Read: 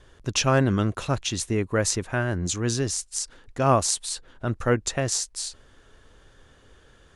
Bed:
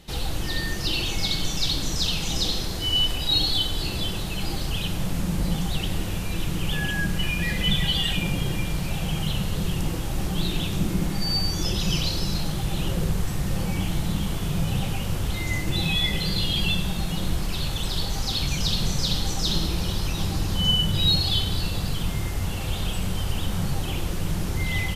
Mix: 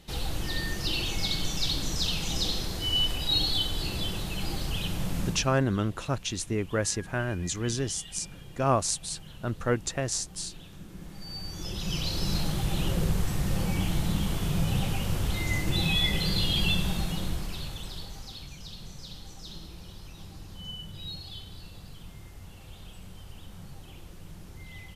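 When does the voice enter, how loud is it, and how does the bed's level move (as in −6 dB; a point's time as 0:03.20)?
5.00 s, −4.5 dB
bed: 0:05.26 −4 dB
0:05.59 −21 dB
0:10.87 −21 dB
0:12.33 −2 dB
0:16.94 −2 dB
0:18.57 −19 dB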